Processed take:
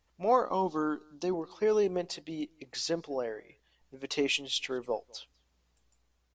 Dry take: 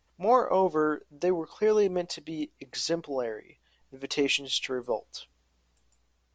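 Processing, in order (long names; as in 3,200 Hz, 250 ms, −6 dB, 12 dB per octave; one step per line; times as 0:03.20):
0:00.45–0:01.34: octave-band graphic EQ 125/250/500/1,000/2,000/4,000 Hz −4/+7/−10/+4/−10/+9 dB
slap from a distant wall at 34 metres, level −28 dB
level −3 dB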